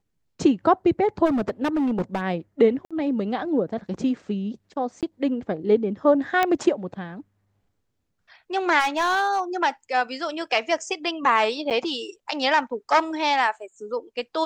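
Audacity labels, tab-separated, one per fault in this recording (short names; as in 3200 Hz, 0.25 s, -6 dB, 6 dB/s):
1.250000	2.220000	clipped -19.5 dBFS
2.850000	2.910000	gap 56 ms
5.010000	5.030000	gap 17 ms
6.430000	6.430000	pop -8 dBFS
8.790000	9.400000	clipped -17.5 dBFS
11.700000	11.710000	gap 8.2 ms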